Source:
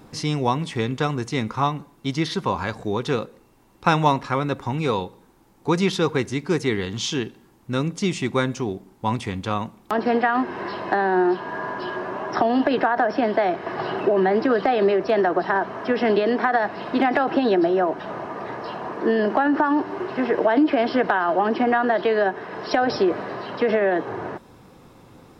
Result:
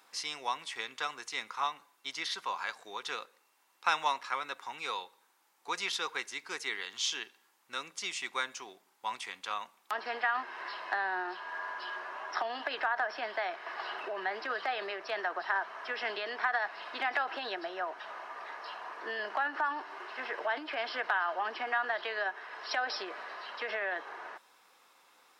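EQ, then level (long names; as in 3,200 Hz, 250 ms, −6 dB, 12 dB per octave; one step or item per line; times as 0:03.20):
high-pass filter 1,200 Hz 12 dB per octave
−5.0 dB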